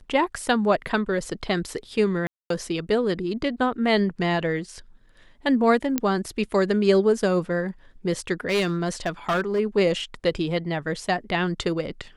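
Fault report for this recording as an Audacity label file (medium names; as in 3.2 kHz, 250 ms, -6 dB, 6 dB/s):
2.270000	2.500000	dropout 233 ms
5.980000	5.980000	pop -8 dBFS
8.470000	9.600000	clipped -19 dBFS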